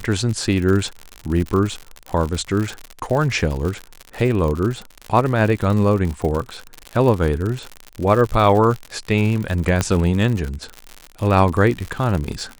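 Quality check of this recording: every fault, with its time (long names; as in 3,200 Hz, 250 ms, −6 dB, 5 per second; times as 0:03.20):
surface crackle 85 per second −23 dBFS
0:09.81: click −4 dBFS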